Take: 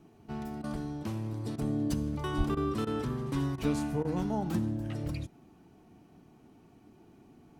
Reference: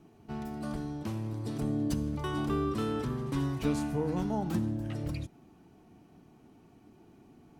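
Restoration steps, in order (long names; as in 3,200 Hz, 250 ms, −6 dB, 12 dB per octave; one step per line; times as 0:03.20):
0:02.37–0:02.49: high-pass filter 140 Hz 24 dB per octave
repair the gap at 0:00.62/0:01.56/0:02.55/0:02.85/0:03.56/0:04.03, 18 ms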